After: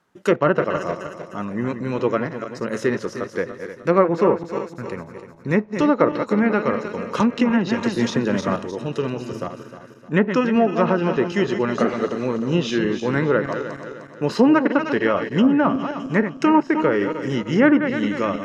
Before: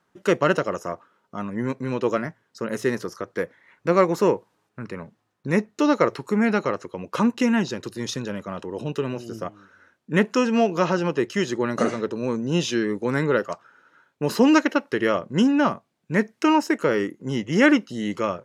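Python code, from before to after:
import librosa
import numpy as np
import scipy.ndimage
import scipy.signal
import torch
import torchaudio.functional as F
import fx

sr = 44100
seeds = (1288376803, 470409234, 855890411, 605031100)

y = fx.reverse_delay_fb(x, sr, ms=153, feedback_pct=65, wet_db=-9.0)
y = fx.env_lowpass_down(y, sr, base_hz=1600.0, full_db=-14.0)
y = fx.band_squash(y, sr, depth_pct=100, at=(7.2, 8.56))
y = F.gain(torch.from_numpy(y), 2.0).numpy()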